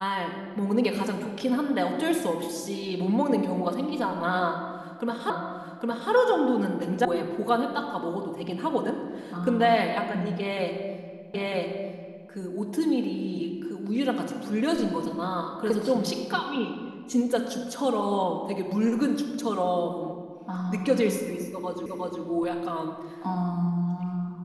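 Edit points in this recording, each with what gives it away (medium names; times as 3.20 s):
5.30 s: repeat of the last 0.81 s
7.05 s: sound stops dead
11.34 s: repeat of the last 0.95 s
21.86 s: repeat of the last 0.36 s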